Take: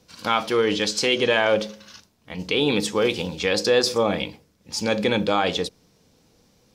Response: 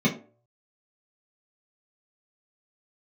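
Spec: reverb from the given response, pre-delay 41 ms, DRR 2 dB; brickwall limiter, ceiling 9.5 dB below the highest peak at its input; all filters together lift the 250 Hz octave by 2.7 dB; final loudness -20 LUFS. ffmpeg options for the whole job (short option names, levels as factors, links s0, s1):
-filter_complex "[0:a]equalizer=f=250:t=o:g=3.5,alimiter=limit=0.178:level=0:latency=1,asplit=2[s0][s1];[1:a]atrim=start_sample=2205,adelay=41[s2];[s1][s2]afir=irnorm=-1:irlink=0,volume=0.178[s3];[s0][s3]amix=inputs=2:normalize=0,volume=0.794"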